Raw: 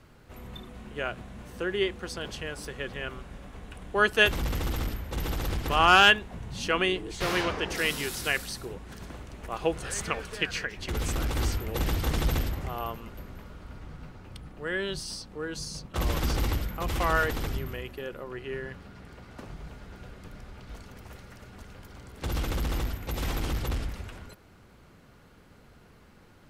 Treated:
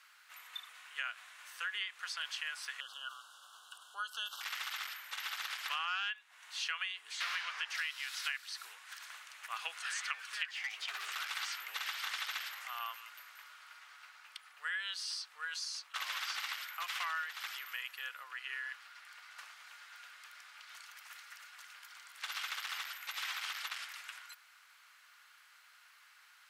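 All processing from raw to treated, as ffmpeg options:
-filter_complex "[0:a]asettb=1/sr,asplit=3[s0][s1][s2];[s0]atrim=end=2.804[s3];[s1]atrim=start=2.8:end=4.41,asetpts=PTS-STARTPTS,afade=t=in:d=0.004:c=qsin,afade=t=out:st=1.606:d=0.004:c=qsin,acompressor=threshold=0.0224:ratio=3:attack=3.2:release=140:knee=1:detection=peak,asuperstop=centerf=2100:order=12:qfactor=1.6[s4];[s2]atrim=start=4.406[s5];[s3][s4]acrossfade=d=0.004:c1=hsin:c2=qsin[s6];[s6][s5]acrossfade=d=0.004:c1=qsin:c2=hsin,asettb=1/sr,asplit=3[s7][s8][s9];[s7]atrim=end=10.484[s10];[s8]atrim=start=10.48:end=11.12,asetpts=PTS-STARTPTS,afade=t=in:d=0.004:c=qsin,afade=t=out:st=0.636:d=0.004:c=qsin,acrossover=split=3700[s11][s12];[s12]acompressor=threshold=0.00501:ratio=4:attack=1:release=60[s13];[s11][s13]amix=inputs=2:normalize=0,afreqshift=340,volume=37.6,asoftclip=hard,volume=0.0266[s14];[s9]atrim=start=11.116[s15];[s10][s14]acrossfade=d=0.004:c1=hsin:c2=qsin[s16];[s16][s15]acrossfade=d=0.004:c1=qsin:c2=hsin,acrossover=split=5400[s17][s18];[s18]acompressor=threshold=0.00224:ratio=4:attack=1:release=60[s19];[s17][s19]amix=inputs=2:normalize=0,highpass=f=1300:w=0.5412,highpass=f=1300:w=1.3066,acompressor=threshold=0.0141:ratio=10,volume=1.33"

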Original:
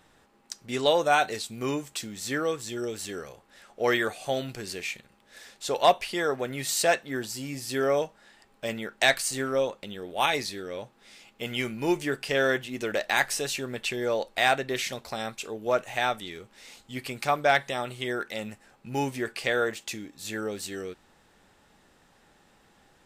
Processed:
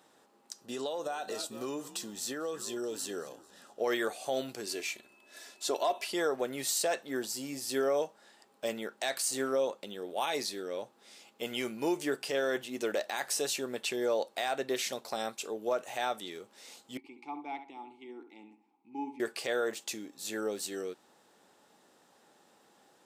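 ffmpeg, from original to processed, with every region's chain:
-filter_complex "[0:a]asettb=1/sr,asplit=3[s0][s1][s2];[s0]atrim=end=0.614[s3];[s1]atrim=start=0.61:end=3.81,asetpts=PTS-STARTPTS,afade=t=in:d=0.004:c=qsin,afade=t=out:st=3.196:d=0.004:c=qsin,asplit=5[s4][s5][s6][s7][s8];[s5]adelay=222,afreqshift=-96,volume=0.1[s9];[s6]adelay=444,afreqshift=-192,volume=0.0519[s10];[s7]adelay=666,afreqshift=-288,volume=0.0269[s11];[s8]adelay=888,afreqshift=-384,volume=0.0141[s12];[s4][s9][s10][s11][s12]amix=inputs=5:normalize=0,atrim=end_sample=141120,acompressor=threshold=0.0316:ratio=12:attack=3.2:release=140:knee=1:detection=peak,asuperstop=centerf=2200:order=8:qfactor=7.6[s13];[s2]atrim=start=3.806[s14];[s3][s13]acrossfade=d=0.004:c1=hsin:c2=qsin[s15];[s15][s14]acrossfade=d=0.004:c1=qsin:c2=hsin,asettb=1/sr,asplit=3[s16][s17][s18];[s16]atrim=end=4.664[s19];[s17]atrim=start=4.66:end=6.12,asetpts=PTS-STARTPTS,afade=t=in:d=0.004:c=qsin,afade=t=out:st=1.456:d=0.004:c=qsin,aecho=1:1:3:0.59,atrim=end_sample=64386,aeval=exprs='val(0)+0.00158*sin(2*PI*2600*n/s)':c=same[s20];[s18]atrim=start=6.116[s21];[s19][s20]acrossfade=d=0.004:c1=hsin:c2=qsin[s22];[s22][s21]acrossfade=d=0.004:c1=qsin:c2=hsin,asettb=1/sr,asplit=3[s23][s24][s25];[s23]atrim=end=16.974[s26];[s24]atrim=start=16.97:end=19.2,asetpts=PTS-STARTPTS,afade=t=in:d=0.004:c=qsin,afade=t=out:st=2.226:d=0.004:c=qsin,asplit=3[s27][s28][s29];[s27]bandpass=f=300:t=q:w=8,volume=1[s30];[s28]bandpass=f=870:t=q:w=8,volume=0.501[s31];[s29]bandpass=f=2240:t=q:w=8,volume=0.355[s32];[s30][s31][s32]amix=inputs=3:normalize=0,asplit=2[s33][s34];[s34]adelay=69,lowpass=f=2700:p=1,volume=0.335,asplit=2[s35][s36];[s36]adelay=69,lowpass=f=2700:p=1,volume=0.3,asplit=2[s37][s38];[s38]adelay=69,lowpass=f=2700:p=1,volume=0.3[s39];[s33][s35][s37][s39]amix=inputs=4:normalize=0,atrim=end_sample=98343[s40];[s25]atrim=start=19.196[s41];[s26][s40]acrossfade=d=0.004:c1=hsin:c2=qsin[s42];[s42][s41]acrossfade=d=0.004:c1=qsin:c2=hsin,highpass=280,equalizer=f=2100:w=1:g=-7,alimiter=limit=0.0891:level=0:latency=1:release=80"

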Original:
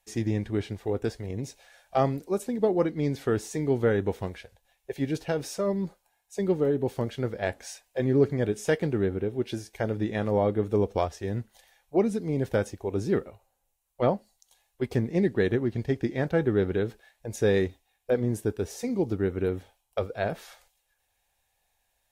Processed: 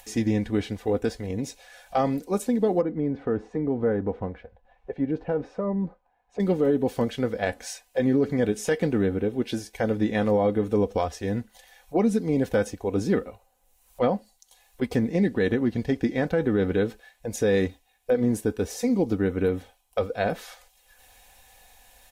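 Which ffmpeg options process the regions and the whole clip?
-filter_complex "[0:a]asettb=1/sr,asplit=3[s0][s1][s2];[s0]atrim=end=2.814[s3];[s1]atrim=start=2.81:end=6.4,asetpts=PTS-STARTPTS,afade=t=in:d=0.004:c=qsin,afade=t=out:st=3.586:d=0.004:c=qsin,lowpass=1200,acompressor=threshold=0.0398:ratio=2:attack=3.2:release=140:knee=1:detection=peak[s4];[s2]atrim=start=6.396[s5];[s3][s4]acrossfade=d=0.004:c1=hsin:c2=qsin[s6];[s6][s5]acrossfade=d=0.004:c1=qsin:c2=hsin,aecho=1:1:4:0.47,acompressor=mode=upward:threshold=0.00631:ratio=2.5,alimiter=limit=0.133:level=0:latency=1:release=72,volume=1.58"

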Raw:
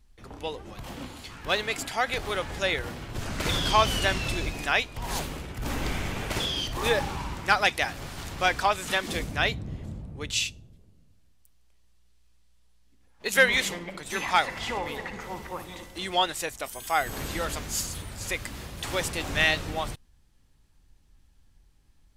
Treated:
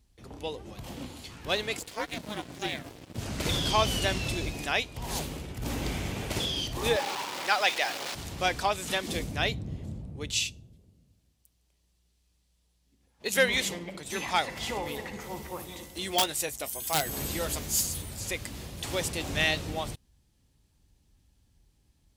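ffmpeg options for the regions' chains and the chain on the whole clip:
-filter_complex "[0:a]asettb=1/sr,asplit=3[s0][s1][s2];[s0]atrim=end=1.794[s3];[s1]atrim=start=1.79:end=3.18,asetpts=PTS-STARTPTS,afade=t=in:d=0.004:c=qsin,afade=t=out:st=1.386:d=0.004:c=qsin,aeval=exprs='val(0)*sin(2*PI*210*n/s)':c=same,aeval=exprs='sgn(val(0))*max(abs(val(0))-0.0075,0)':c=same[s4];[s2]atrim=start=3.176[s5];[s3][s4]acrossfade=d=0.004:c1=hsin:c2=qsin[s6];[s6][s5]acrossfade=d=0.004:c1=qsin:c2=hsin,asettb=1/sr,asplit=3[s7][s8][s9];[s7]atrim=end=6.964[s10];[s8]atrim=start=6.96:end=8.15,asetpts=PTS-STARTPTS,afade=t=in:d=0.004:c=qsin,afade=t=out:st=1.186:d=0.004:c=qsin,aeval=exprs='val(0)+0.5*0.0596*sgn(val(0))':c=same,acrossover=split=6000[s11][s12];[s12]acompressor=threshold=0.00708:ratio=4:attack=1:release=60[s13];[s11][s13]amix=inputs=2:normalize=0,highpass=560[s14];[s9]atrim=start=8.146[s15];[s10][s14]acrossfade=d=0.004:c1=hsin:c2=qsin[s16];[s16][s15]acrossfade=d=0.004:c1=qsin:c2=hsin,asettb=1/sr,asplit=3[s17][s18][s19];[s17]atrim=end=14.564[s20];[s18]atrim=start=14.56:end=18.21,asetpts=PTS-STARTPTS,afade=t=in:d=0.004:c=qsin,afade=t=out:st=3.646:d=0.004:c=qsin,highshelf=f=10000:g=10,aeval=exprs='(mod(5.01*val(0)+1,2)-1)/5.01':c=same,asplit=2[s21][s22];[s22]adelay=14,volume=0.251[s23];[s21][s23]amix=inputs=2:normalize=0,atrim=end_sample=160965[s24];[s19]atrim=start=18.206[s25];[s20][s24]acrossfade=d=0.004:c1=hsin:c2=qsin[s26];[s26][s25]acrossfade=d=0.004:c1=qsin:c2=hsin,highpass=50,equalizer=f=1400:w=0.88:g=-7"

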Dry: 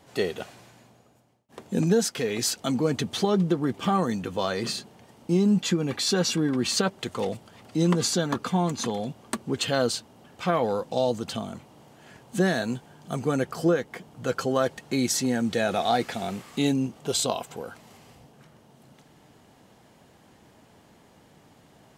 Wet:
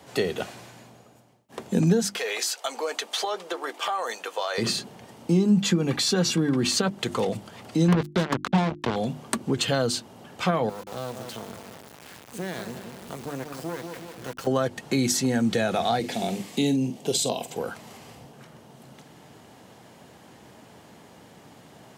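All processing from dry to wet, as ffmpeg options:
-filter_complex "[0:a]asettb=1/sr,asplit=3[s0][s1][s2];[s0]atrim=end=2.164[s3];[s1]atrim=start=2.16:end=4.58,asetpts=PTS-STARTPTS,afade=t=in:d=0.004:c=qsin,afade=t=out:st=2.416:d=0.004:c=qsin,highpass=f=550:w=0.5412,highpass=f=550:w=1.3066,acompressor=threshold=0.0355:ratio=4:attack=3.2:release=140:knee=1:detection=peak[s4];[s2]atrim=start=4.576[s5];[s3][s4]acrossfade=d=0.004:c1=hsin:c2=qsin[s6];[s6][s5]acrossfade=d=0.004:c1=qsin:c2=hsin,asettb=1/sr,asplit=3[s7][s8][s9];[s7]atrim=end=7.884[s10];[s8]atrim=start=7.88:end=8.96,asetpts=PTS-STARTPTS,afade=t=in:d=0.004:c=qsin,afade=t=out:st=1.076:d=0.004:c=qsin,lowpass=f=3500:w=0.5412,lowpass=f=3500:w=1.3066,acrusher=bits=3:mix=0:aa=0.5[s11];[s9]atrim=start=8.956[s12];[s10][s11]acrossfade=d=0.004:c1=hsin:c2=qsin[s13];[s13][s12]acrossfade=d=0.004:c1=qsin:c2=hsin,asettb=1/sr,asplit=3[s14][s15][s16];[s14]atrim=end=10.694[s17];[s15]atrim=start=10.69:end=14.47,asetpts=PTS-STARTPTS,afade=t=in:d=0.004:c=qsin,afade=t=out:st=3.776:d=0.004:c=qsin,asplit=2[s18][s19];[s19]adelay=179,lowpass=f=1200:p=1,volume=0.316,asplit=2[s20][s21];[s21]adelay=179,lowpass=f=1200:p=1,volume=0.38,asplit=2[s22][s23];[s23]adelay=179,lowpass=f=1200:p=1,volume=0.38,asplit=2[s24][s25];[s25]adelay=179,lowpass=f=1200:p=1,volume=0.38[s26];[s18][s20][s22][s24][s26]amix=inputs=5:normalize=0,atrim=end_sample=166698,acompressor=threshold=0.00794:ratio=2:attack=3.2:release=140:knee=1:detection=peak,acrusher=bits=5:dc=4:mix=0:aa=0.000001[s27];[s16]atrim=start=14.466[s28];[s17][s27]acrossfade=d=0.004:c1=hsin:c2=qsin[s29];[s29][s28]acrossfade=d=0.004:c1=qsin:c2=hsin,asettb=1/sr,asplit=3[s30][s31][s32];[s30]atrim=end=15.994[s33];[s31]atrim=start=15.99:end=17.57,asetpts=PTS-STARTPTS,afade=t=in:d=0.004:c=qsin,afade=t=out:st=1.576:d=0.004:c=qsin,highpass=140,equalizer=f=1300:t=o:w=0.8:g=-13,asplit=2[s34][s35];[s35]adelay=47,volume=0.237[s36];[s34][s36]amix=inputs=2:normalize=0,atrim=end_sample=69678[s37];[s32]atrim=start=17.566[s38];[s33][s37]acrossfade=d=0.004:c1=hsin:c2=qsin[s39];[s39][s38]acrossfade=d=0.004:c1=qsin:c2=hsin,highpass=81,bandreject=f=50:t=h:w=6,bandreject=f=100:t=h:w=6,bandreject=f=150:t=h:w=6,bandreject=f=200:t=h:w=6,bandreject=f=250:t=h:w=6,bandreject=f=300:t=h:w=6,bandreject=f=350:t=h:w=6,acrossover=split=170[s40][s41];[s41]acompressor=threshold=0.0316:ratio=3[s42];[s40][s42]amix=inputs=2:normalize=0,volume=2.11"

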